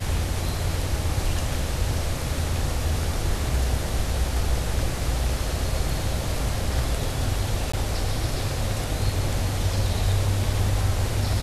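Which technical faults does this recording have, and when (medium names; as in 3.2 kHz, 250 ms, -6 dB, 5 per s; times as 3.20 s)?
7.72–7.74 s: dropout 15 ms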